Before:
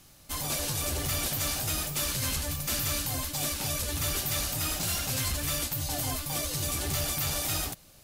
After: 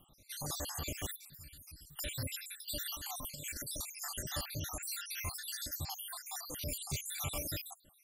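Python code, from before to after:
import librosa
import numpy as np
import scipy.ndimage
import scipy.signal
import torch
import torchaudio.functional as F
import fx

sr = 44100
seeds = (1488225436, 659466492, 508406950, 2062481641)

y = fx.spec_dropout(x, sr, seeds[0], share_pct=74)
y = fx.tone_stack(y, sr, knobs='6-0-2', at=(1.16, 1.99))
y = fx.over_compress(y, sr, threshold_db=-38.0, ratio=-0.5, at=(2.86, 3.77))
y = F.gain(torch.from_numpy(y), -4.0).numpy()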